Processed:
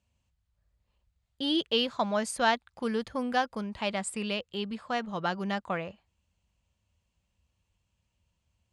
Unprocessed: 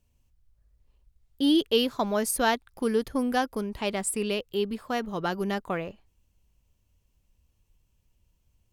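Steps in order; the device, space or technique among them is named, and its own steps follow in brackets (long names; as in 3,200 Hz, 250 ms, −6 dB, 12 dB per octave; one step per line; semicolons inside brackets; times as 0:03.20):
car door speaker (loudspeaker in its box 83–7,700 Hz, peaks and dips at 130 Hz −7 dB, 280 Hz −9 dB, 410 Hz −9 dB, 5,700 Hz −6 dB)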